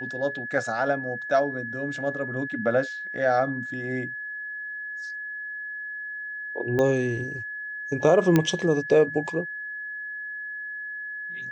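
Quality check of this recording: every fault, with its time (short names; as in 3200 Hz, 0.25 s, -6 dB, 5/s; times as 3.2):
tone 1700 Hz -32 dBFS
6.79 pop -14 dBFS
8.36 pop -7 dBFS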